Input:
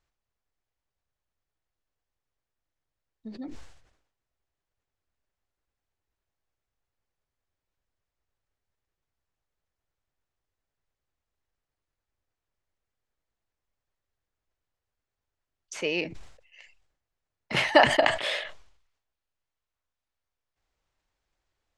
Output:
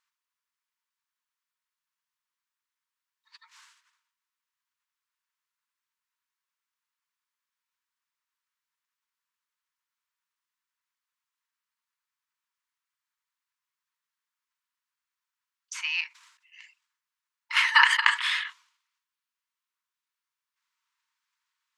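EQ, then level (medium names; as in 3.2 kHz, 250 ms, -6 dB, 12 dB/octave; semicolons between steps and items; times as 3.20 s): brick-wall FIR high-pass 890 Hz; dynamic bell 1.4 kHz, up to +4 dB, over -39 dBFS, Q 1.2; +2.0 dB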